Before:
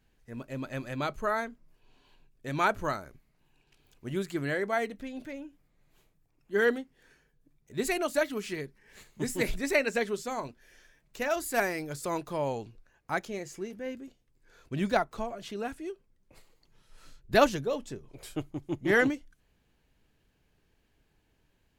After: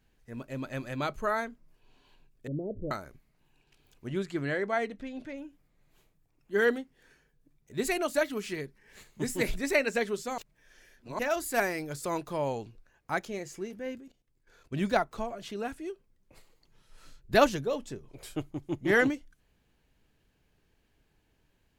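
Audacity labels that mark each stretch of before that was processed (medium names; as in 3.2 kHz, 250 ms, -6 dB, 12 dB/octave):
2.470000	2.910000	steep low-pass 540 Hz 48 dB/octave
4.070000	5.380000	distance through air 58 m
10.380000	11.190000	reverse
13.980000	14.740000	level held to a coarse grid steps of 12 dB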